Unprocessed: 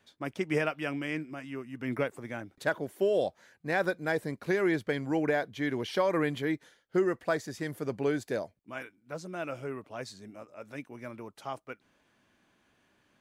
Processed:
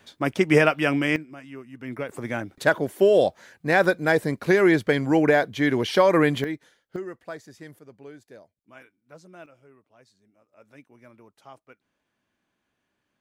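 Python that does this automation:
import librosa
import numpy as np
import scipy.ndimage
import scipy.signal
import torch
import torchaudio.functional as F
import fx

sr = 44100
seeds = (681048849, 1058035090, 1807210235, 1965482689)

y = fx.gain(x, sr, db=fx.steps((0.0, 11.5), (1.16, -1.0), (2.09, 9.5), (6.44, 0.0), (6.96, -7.5), (7.79, -14.5), (8.58, -8.0), (9.46, -17.0), (10.53, -8.5)))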